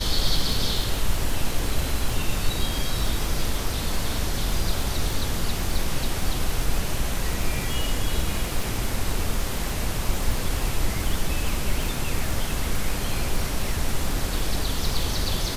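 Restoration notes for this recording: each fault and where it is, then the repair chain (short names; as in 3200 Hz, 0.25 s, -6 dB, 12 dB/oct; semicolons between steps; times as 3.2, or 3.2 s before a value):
crackle 45/s -25 dBFS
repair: de-click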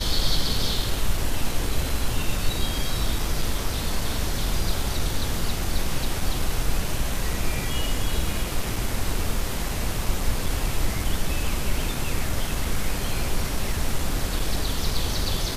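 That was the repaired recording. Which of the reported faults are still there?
none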